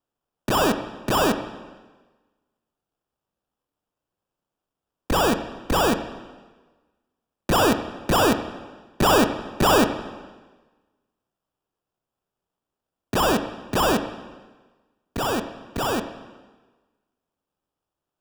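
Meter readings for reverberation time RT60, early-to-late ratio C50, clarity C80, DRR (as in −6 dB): 1.3 s, 10.0 dB, 11.5 dB, 8.0 dB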